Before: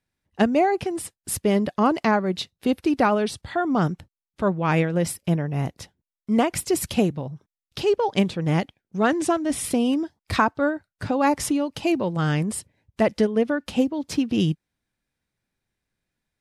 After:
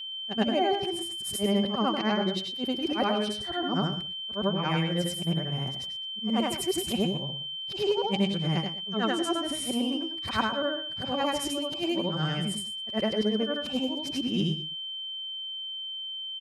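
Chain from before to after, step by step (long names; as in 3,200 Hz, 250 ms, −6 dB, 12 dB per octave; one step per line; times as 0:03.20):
every overlapping window played backwards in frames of 208 ms
steady tone 3,100 Hz −33 dBFS
comb filter 5.2 ms, depth 34%
single-tap delay 119 ms −13.5 dB
level −4 dB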